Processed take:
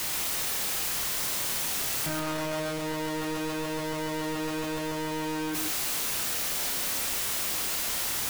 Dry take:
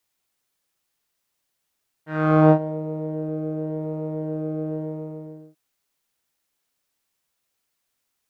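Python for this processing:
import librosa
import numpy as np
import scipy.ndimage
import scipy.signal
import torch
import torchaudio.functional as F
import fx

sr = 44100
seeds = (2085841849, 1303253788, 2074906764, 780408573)

y = np.sign(x) * np.sqrt(np.mean(np.square(x)))
y = fx.doubler(y, sr, ms=29.0, db=-7)
y = y + 10.0 ** (-6.0 / 20.0) * np.pad(y, (int(133 * sr / 1000.0), 0))[:len(y)]
y = y * librosa.db_to_amplitude(-4.0)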